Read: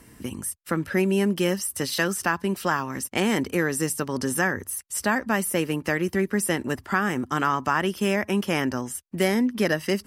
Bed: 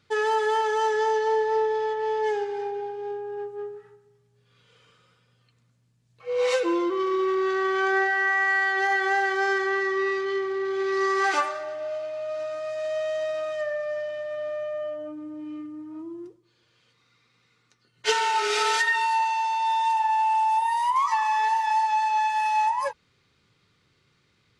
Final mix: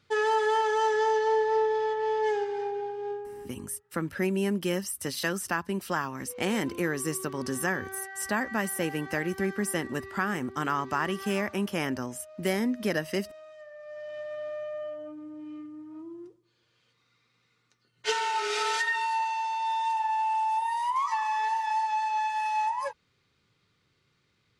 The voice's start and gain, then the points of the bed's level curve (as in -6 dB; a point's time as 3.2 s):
3.25 s, -5.5 dB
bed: 3.12 s -1.5 dB
3.69 s -18.5 dB
13.71 s -18.5 dB
14.18 s -5 dB